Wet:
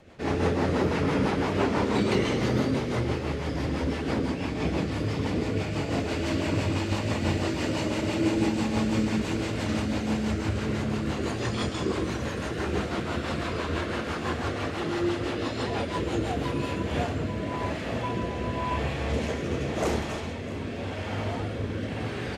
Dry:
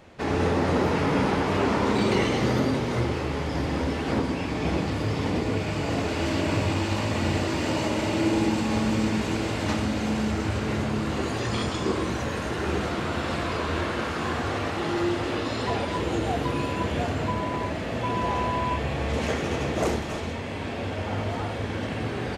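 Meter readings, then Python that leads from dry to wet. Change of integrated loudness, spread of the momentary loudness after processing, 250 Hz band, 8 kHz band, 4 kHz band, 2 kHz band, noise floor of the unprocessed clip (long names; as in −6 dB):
−2.0 dB, 6 LU, −1.5 dB, −2.5 dB, −2.5 dB, −3.0 dB, −31 dBFS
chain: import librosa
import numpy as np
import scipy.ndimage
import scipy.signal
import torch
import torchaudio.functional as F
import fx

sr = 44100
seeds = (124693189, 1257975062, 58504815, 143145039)

y = fx.rotary_switch(x, sr, hz=6.0, then_hz=0.9, switch_at_s=16.31)
y = y + 10.0 ** (-18.5 / 20.0) * np.pad(y, (int(651 * sr / 1000.0), 0))[:len(y)]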